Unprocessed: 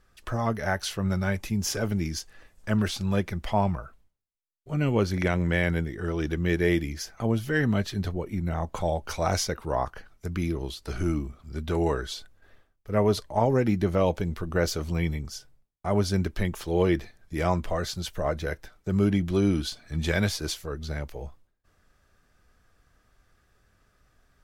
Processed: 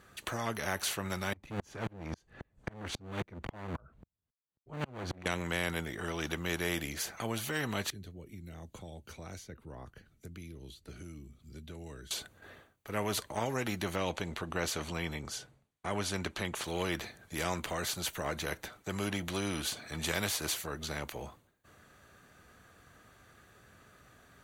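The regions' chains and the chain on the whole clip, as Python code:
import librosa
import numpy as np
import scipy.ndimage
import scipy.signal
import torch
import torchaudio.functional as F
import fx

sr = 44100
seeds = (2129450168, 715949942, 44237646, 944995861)

y = fx.chain(x, sr, fx.riaa(side='playback'),
    fx.overload_stage(gain_db=17.0),
    fx.tremolo_decay(direction='swelling', hz=3.7, depth_db=38), at=(1.33, 5.26))
y = fx.chain(y, sr, fx.tone_stack(knobs='10-0-1'),
    fx.band_squash(depth_pct=70), at=(7.9, 12.11))
y = fx.chain(y, sr, fx.lowpass(hz=11000.0, slope=12),
    fx.high_shelf(hz=6200.0, db=-6.0), at=(13.96, 16.64))
y = scipy.signal.sosfilt(scipy.signal.butter(2, 100.0, 'highpass', fs=sr, output='sos'), y)
y = fx.notch(y, sr, hz=5200.0, q=5.1)
y = fx.spectral_comp(y, sr, ratio=2.0)
y = F.gain(torch.from_numpy(y), -7.5).numpy()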